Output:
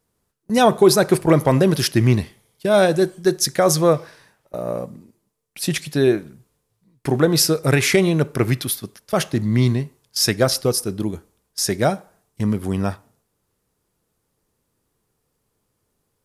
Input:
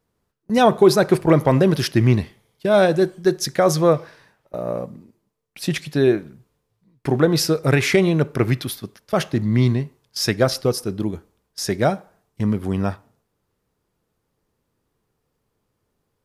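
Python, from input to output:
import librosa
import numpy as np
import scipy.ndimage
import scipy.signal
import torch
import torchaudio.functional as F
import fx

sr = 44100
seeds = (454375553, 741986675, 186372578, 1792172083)

y = fx.peak_eq(x, sr, hz=10000.0, db=9.0, octaves=1.5)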